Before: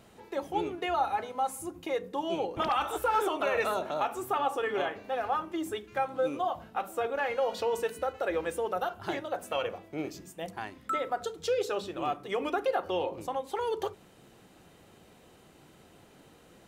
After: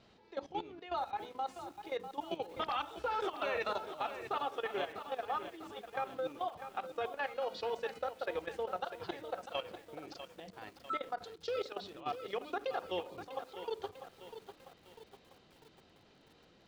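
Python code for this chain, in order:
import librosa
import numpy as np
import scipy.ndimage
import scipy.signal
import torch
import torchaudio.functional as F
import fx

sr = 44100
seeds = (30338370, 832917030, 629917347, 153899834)

y = fx.level_steps(x, sr, step_db=15)
y = fx.ladder_lowpass(y, sr, hz=5400.0, resonance_pct=45)
y = fx.echo_crushed(y, sr, ms=647, feedback_pct=55, bits=10, wet_db=-10.0)
y = y * 10.0 ** (4.0 / 20.0)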